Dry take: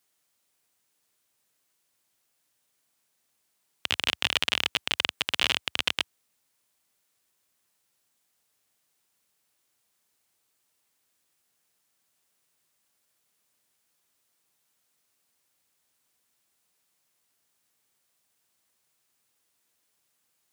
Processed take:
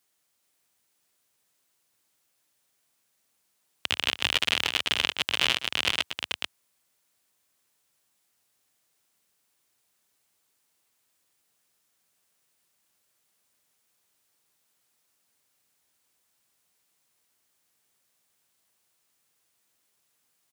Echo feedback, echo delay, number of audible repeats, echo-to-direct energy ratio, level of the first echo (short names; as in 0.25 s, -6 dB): no steady repeat, 0.118 s, 2, -4.5 dB, -16.0 dB